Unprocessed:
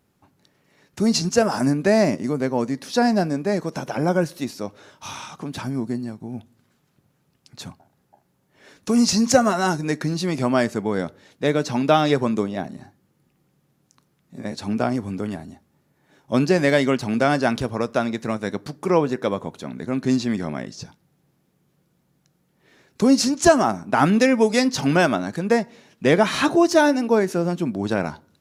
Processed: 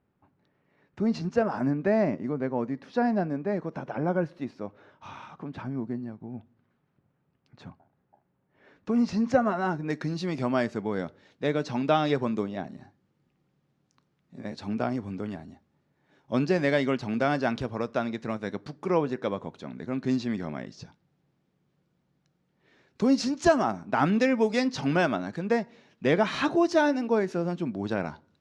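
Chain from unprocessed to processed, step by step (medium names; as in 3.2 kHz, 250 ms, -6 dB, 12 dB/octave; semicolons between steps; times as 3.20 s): low-pass 2.1 kHz 12 dB/octave, from 9.90 s 4.6 kHz; trim -6.5 dB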